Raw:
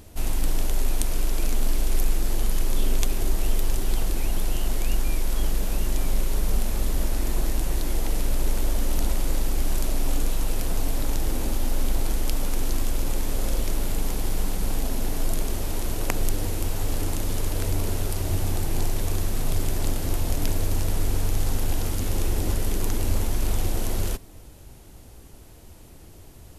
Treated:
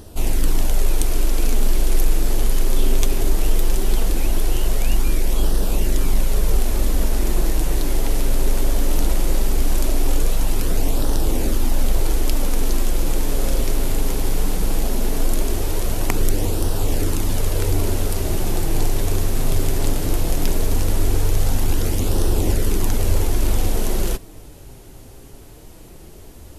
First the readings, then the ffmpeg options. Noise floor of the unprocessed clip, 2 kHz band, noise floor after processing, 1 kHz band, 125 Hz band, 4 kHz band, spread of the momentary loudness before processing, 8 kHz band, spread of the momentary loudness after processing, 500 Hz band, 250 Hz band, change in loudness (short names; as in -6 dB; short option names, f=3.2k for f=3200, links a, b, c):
-46 dBFS, +4.5 dB, -40 dBFS, +5.0 dB, +5.0 dB, +4.5 dB, 2 LU, +4.5 dB, 2 LU, +7.5 dB, +6.0 dB, +5.5 dB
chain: -af "equalizer=f=400:t=o:w=0.74:g=3.5,acontrast=26,flanger=delay=0.2:depth=7.4:regen=-51:speed=0.18:shape=sinusoidal,volume=4dB"